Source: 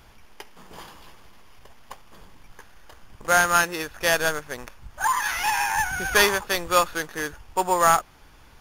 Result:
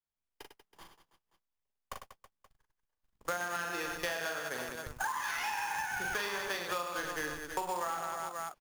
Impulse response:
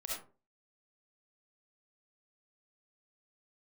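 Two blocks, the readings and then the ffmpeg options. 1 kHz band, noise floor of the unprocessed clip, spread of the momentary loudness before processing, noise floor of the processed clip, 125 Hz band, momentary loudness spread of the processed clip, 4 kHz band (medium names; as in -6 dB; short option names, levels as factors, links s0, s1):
-13.5 dB, -51 dBFS, 12 LU, under -85 dBFS, -13.5 dB, 15 LU, -13.0 dB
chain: -filter_complex "[0:a]agate=range=0.00398:threshold=0.0141:ratio=16:detection=peak,asplit=2[s0][s1];[s1]aecho=0:1:40|100|190|325|527.5:0.631|0.398|0.251|0.158|0.1[s2];[s0][s2]amix=inputs=2:normalize=0,acrossover=split=490|6300[s3][s4][s5];[s3]acompressor=threshold=0.0251:ratio=4[s6];[s4]acompressor=threshold=0.1:ratio=4[s7];[s5]acompressor=threshold=0.00794:ratio=4[s8];[s6][s7][s8]amix=inputs=3:normalize=0,acrossover=split=110|6400[s9][s10][s11];[s9]aeval=exprs='max(val(0),0)':c=same[s12];[s12][s10][s11]amix=inputs=3:normalize=0,acrusher=bits=3:mode=log:mix=0:aa=0.000001,acompressor=threshold=0.02:ratio=5"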